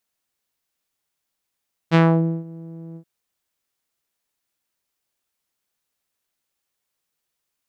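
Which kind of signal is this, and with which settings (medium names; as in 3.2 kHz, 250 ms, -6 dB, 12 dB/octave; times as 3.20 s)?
synth note saw E3 12 dB/octave, low-pass 370 Hz, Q 1, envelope 3.5 oct, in 0.31 s, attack 37 ms, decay 0.49 s, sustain -23.5 dB, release 0.08 s, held 1.05 s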